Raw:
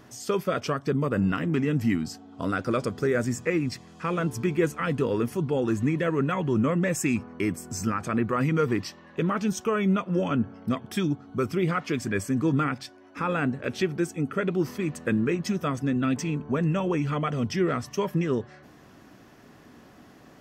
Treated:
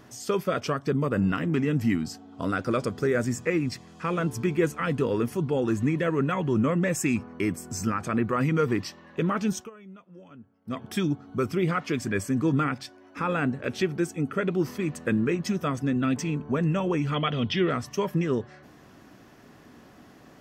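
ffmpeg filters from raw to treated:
-filter_complex "[0:a]asettb=1/sr,asplit=3[s0][s1][s2];[s0]atrim=end=17.144[s3];[s1]atrim=start=17.14:end=17.7,asetpts=PTS-STARTPTS,afade=t=in:d=0.004:c=qsin,afade=t=out:st=0.556:d=0.004:c=qsin,lowpass=f=3400:t=q:w=4.5[s4];[s2]atrim=start=17.696[s5];[s3][s4]acrossfade=d=0.004:c1=hsin:c2=qsin[s6];[s6][s5]acrossfade=d=0.004:c1=qsin:c2=hsin,asplit=3[s7][s8][s9];[s7]atrim=end=9.7,asetpts=PTS-STARTPTS,afade=t=out:st=9.55:d=0.15:silence=0.0707946[s10];[s8]atrim=start=9.7:end=10.65,asetpts=PTS-STARTPTS,volume=0.0708[s11];[s9]atrim=start=10.65,asetpts=PTS-STARTPTS,afade=t=in:d=0.15:silence=0.0707946[s12];[s10][s11][s12]concat=n=3:v=0:a=1"

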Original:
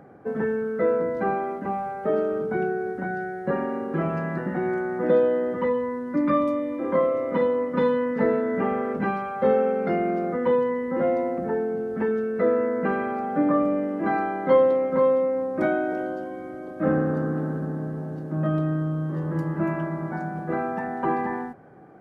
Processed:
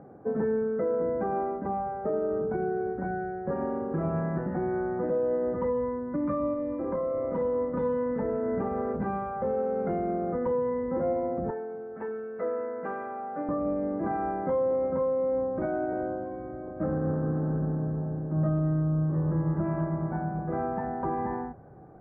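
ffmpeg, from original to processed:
-filter_complex "[0:a]asettb=1/sr,asplit=3[s0][s1][s2];[s0]atrim=end=6.534[s3];[s1]atrim=start=6.53:end=7.38,asetpts=PTS-STARTPTS,afade=t=in:d=0.004:c=qsin,afade=t=out:st=0.846:d=0.004:c=qsin,acompressor=threshold=0.0631:ratio=6:attack=3.2:release=140:knee=1:detection=peak[s4];[s2]atrim=start=7.376[s5];[s3][s4]acrossfade=d=0.004:c1=hsin:c2=qsin[s6];[s6][s5]acrossfade=d=0.004:c1=qsin:c2=hsin,asettb=1/sr,asplit=3[s7][s8][s9];[s7]atrim=end=11.504[s10];[s8]atrim=start=11.5:end=13.49,asetpts=PTS-STARTPTS,afade=t=in:d=0.004:c=qsin,afade=t=out:st=1.986:d=0.004:c=qsin,highpass=f=990:p=1[s11];[s9]atrim=start=13.486[s12];[s10][s11]acrossfade=d=0.004:c1=hsin:c2=qsin[s13];[s13][s12]acrossfade=d=0.004:c1=qsin:c2=hsin,lowpass=1000,alimiter=limit=0.106:level=0:latency=1:release=99,asubboost=boost=5:cutoff=97"

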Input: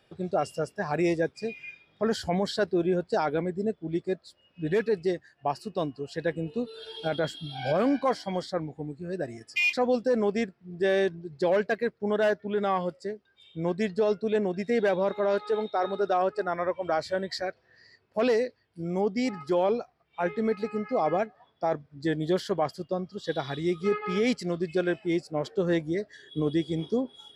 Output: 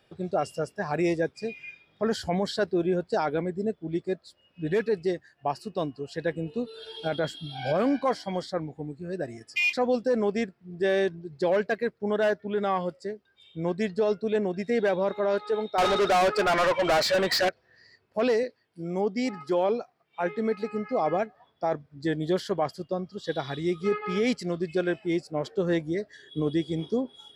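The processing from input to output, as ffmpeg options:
-filter_complex "[0:a]asettb=1/sr,asplit=3[s0][s1][s2];[s0]atrim=end=15.784[s3];[s1]atrim=start=15.78:end=17.49,asetpts=PTS-STARTPTS,afade=t=in:d=0.004:c=qsin,afade=t=out:st=1.706:d=0.004:c=qsin,asplit=2[s4][s5];[s5]highpass=f=720:p=1,volume=25.1,asoftclip=type=tanh:threshold=0.158[s6];[s4][s6]amix=inputs=2:normalize=0,lowpass=f=6100:p=1,volume=0.501[s7];[s2]atrim=start=17.486[s8];[s3][s7]acrossfade=d=0.004:c1=hsin:c2=qsin[s9];[s9][s8]acrossfade=d=0.004:c1=qsin:c2=hsin,asettb=1/sr,asplit=3[s10][s11][s12];[s10]atrim=end=18.434[s13];[s11]atrim=start=18.43:end=20.71,asetpts=PTS-STARTPTS,afade=t=in:d=0.004:c=qsin,afade=t=out:st=2.276:d=0.004:c=qsin,highpass=150[s14];[s12]atrim=start=20.706[s15];[s13][s14]acrossfade=d=0.004:c1=hsin:c2=qsin[s16];[s16][s15]acrossfade=d=0.004:c1=qsin:c2=hsin"

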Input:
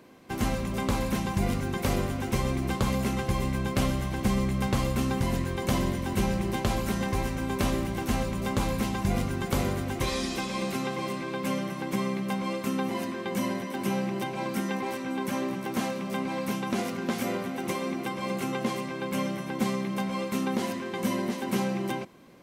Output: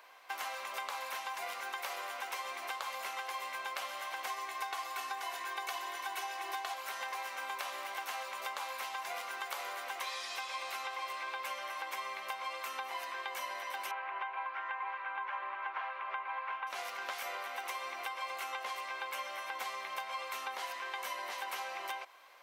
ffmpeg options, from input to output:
-filter_complex "[0:a]asettb=1/sr,asplit=3[s0][s1][s2];[s0]atrim=end=4.274[s3];[s1]atrim=start=4.27:end=6.74,asetpts=PTS-STARTPTS,afade=t=in:d=0.004:c=qsin,afade=t=out:st=2.466:d=0.004:c=qsin,aecho=1:1:2.7:0.98,atrim=end_sample=108927[s4];[s2]atrim=start=6.736[s5];[s3][s4]acrossfade=d=0.004:c1=hsin:c2=qsin[s6];[s6][s5]acrossfade=d=0.004:c1=qsin:c2=hsin,asettb=1/sr,asplit=3[s7][s8][s9];[s7]atrim=end=13.914[s10];[s8]atrim=start=13.91:end=16.67,asetpts=PTS-STARTPTS,afade=t=in:d=0.004:c=qsin,afade=t=out:st=2.756:d=0.004:c=qsin,highpass=240,equalizer=f=260:t=q:w=4:g=-8,equalizer=f=540:t=q:w=4:g=-4,equalizer=f=1000:t=q:w=4:g=6,equalizer=f=1500:t=q:w=4:g=5,lowpass=f=2700:w=0.5412,lowpass=f=2700:w=1.3066[s11];[s9]atrim=start=16.666[s12];[s10][s11]acrossfade=d=0.004:c1=hsin:c2=qsin[s13];[s13][s12]acrossfade=d=0.004:c1=qsin:c2=hsin,highpass=f=760:w=0.5412,highpass=f=760:w=1.3066,acompressor=threshold=0.0112:ratio=6,equalizer=f=8600:t=o:w=1.4:g=-6.5,volume=1.41"

